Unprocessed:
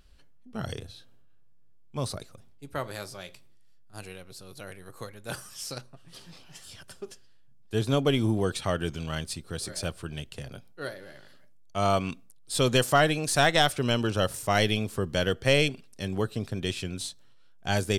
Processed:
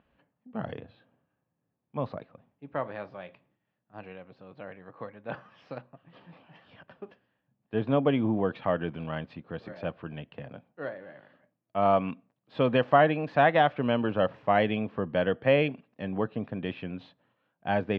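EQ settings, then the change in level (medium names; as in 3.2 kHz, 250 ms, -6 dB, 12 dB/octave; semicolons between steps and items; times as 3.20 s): distance through air 120 m; cabinet simulation 200–2300 Hz, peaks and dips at 380 Hz -9 dB, 1.4 kHz -7 dB, 2.1 kHz -5 dB; +4.0 dB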